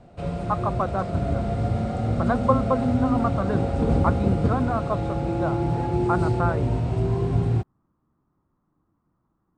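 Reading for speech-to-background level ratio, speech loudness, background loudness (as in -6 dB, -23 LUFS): -3.0 dB, -28.0 LUFS, -25.0 LUFS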